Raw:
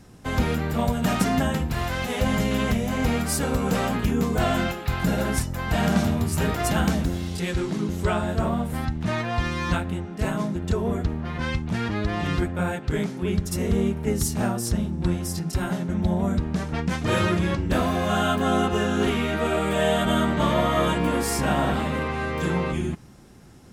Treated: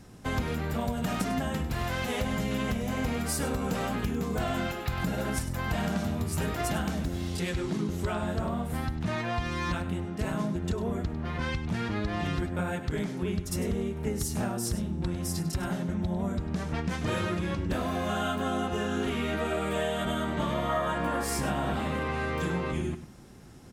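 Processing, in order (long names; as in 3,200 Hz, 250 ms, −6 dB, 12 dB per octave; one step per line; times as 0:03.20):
gain on a spectral selection 0:20.70–0:21.24, 500–1,900 Hz +7 dB
downward compressor 6 to 1, threshold −25 dBFS, peak gain reduction 12.5 dB
on a send: single-tap delay 100 ms −12.5 dB
on the sum: level −1.5 dB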